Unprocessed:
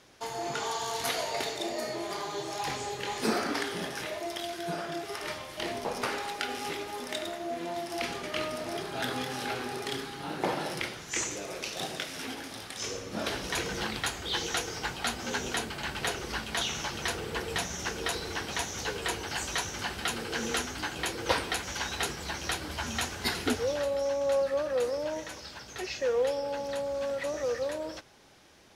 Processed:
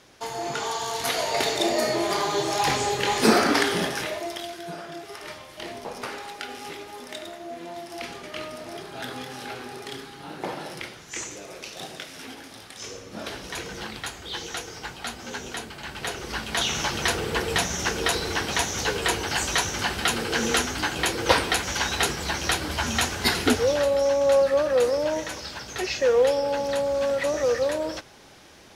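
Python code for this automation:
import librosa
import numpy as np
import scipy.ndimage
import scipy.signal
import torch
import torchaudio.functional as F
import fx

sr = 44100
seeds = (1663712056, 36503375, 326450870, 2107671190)

y = fx.gain(x, sr, db=fx.line((1.03, 4.0), (1.61, 10.5), (3.74, 10.5), (4.71, -2.0), (15.82, -2.0), (16.82, 8.0)))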